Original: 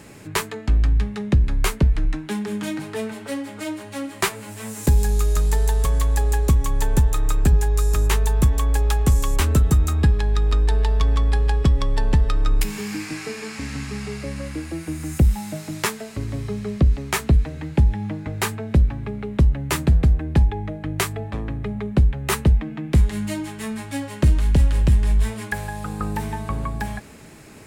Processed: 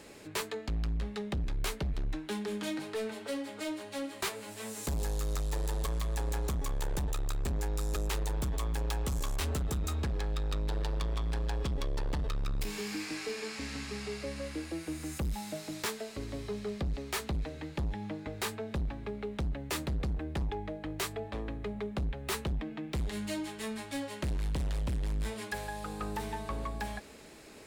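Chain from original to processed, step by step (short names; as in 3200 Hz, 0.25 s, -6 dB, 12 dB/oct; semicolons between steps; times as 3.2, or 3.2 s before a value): ten-band EQ 125 Hz -10 dB, 500 Hz +5 dB, 4000 Hz +6 dB; overloaded stage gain 21.5 dB; gain -8.5 dB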